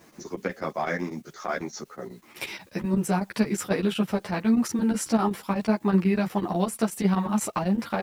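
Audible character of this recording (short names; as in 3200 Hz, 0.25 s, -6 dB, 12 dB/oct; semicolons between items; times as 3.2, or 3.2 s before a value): a quantiser's noise floor 10-bit, dither triangular; chopped level 8.1 Hz, depth 65%, duty 80%; a shimmering, thickened sound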